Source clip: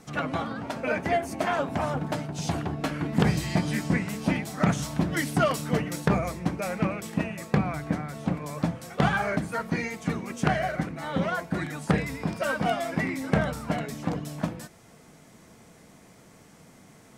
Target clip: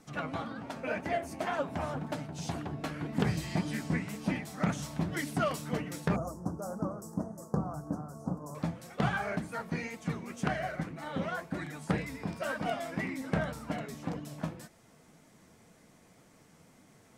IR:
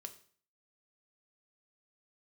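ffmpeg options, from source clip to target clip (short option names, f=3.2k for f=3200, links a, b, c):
-filter_complex "[0:a]flanger=delay=3.2:depth=9.5:regen=60:speed=1.9:shape=sinusoidal,asettb=1/sr,asplit=3[a][b][c];[a]atrim=end=6.164[d];[b]atrim=start=6.16:end=8.55,asetpts=PTS-STARTPTS,afade=t=in:d=0.004:c=qsin,afade=t=out:st=2.386:d=0.004:c=qsin,asuperstop=centerf=2700:order=8:qfactor=0.64[e];[c]atrim=start=8.546[f];[d][e]acrossfade=d=0.004:c1=hsin:c2=qsin[g];[g][f]acrossfade=d=0.004:c1=qsin:c2=hsin,volume=-3dB"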